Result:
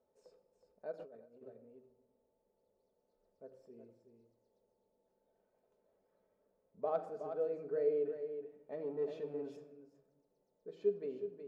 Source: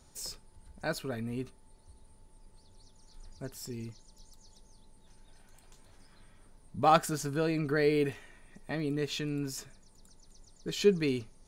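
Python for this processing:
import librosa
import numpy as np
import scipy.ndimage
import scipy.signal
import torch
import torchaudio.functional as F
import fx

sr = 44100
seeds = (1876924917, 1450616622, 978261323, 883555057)

y = x + 10.0 ** (-9.0 / 20.0) * np.pad(x, (int(369 * sr / 1000.0), 0))[:len(x)]
y = fx.leveller(y, sr, passes=2, at=(8.72, 9.57))
y = fx.room_shoebox(y, sr, seeds[0], volume_m3=3700.0, walls='furnished', distance_m=1.5)
y = fx.over_compress(y, sr, threshold_db=-40.0, ratio=-0.5, at=(0.91, 1.41), fade=0.02)
y = fx.bandpass_q(y, sr, hz=520.0, q=6.0)
y = y * 10.0 ** (-1.5 / 20.0)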